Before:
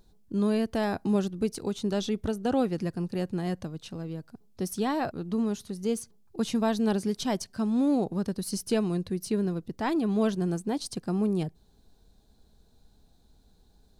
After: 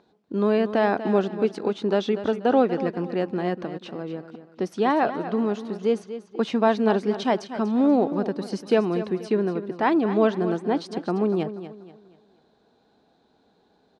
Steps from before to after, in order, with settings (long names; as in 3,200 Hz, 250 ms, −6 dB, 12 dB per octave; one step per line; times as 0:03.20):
band-pass filter 310–2,500 Hz
repeating echo 241 ms, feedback 35%, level −12 dB
level +9 dB